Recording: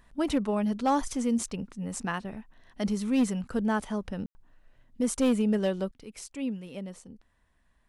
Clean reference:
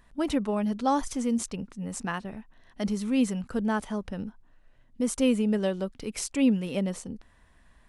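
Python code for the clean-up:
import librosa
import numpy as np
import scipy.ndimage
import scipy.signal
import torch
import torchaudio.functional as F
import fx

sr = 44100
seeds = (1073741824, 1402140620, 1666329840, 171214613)

y = fx.fix_declip(x, sr, threshold_db=-18.5)
y = fx.fix_ambience(y, sr, seeds[0], print_start_s=7.26, print_end_s=7.76, start_s=4.26, end_s=4.35)
y = fx.gain(y, sr, db=fx.steps((0.0, 0.0), (5.91, 10.0)))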